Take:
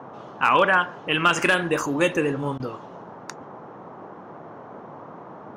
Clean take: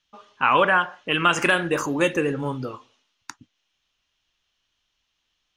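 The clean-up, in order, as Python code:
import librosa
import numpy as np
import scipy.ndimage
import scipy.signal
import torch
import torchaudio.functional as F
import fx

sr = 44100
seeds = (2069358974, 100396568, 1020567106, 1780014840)

y = fx.fix_declip(x, sr, threshold_db=-8.0)
y = fx.fix_interpolate(y, sr, at_s=(2.58,), length_ms=17.0)
y = fx.noise_reduce(y, sr, print_start_s=4.14, print_end_s=4.64, reduce_db=30.0)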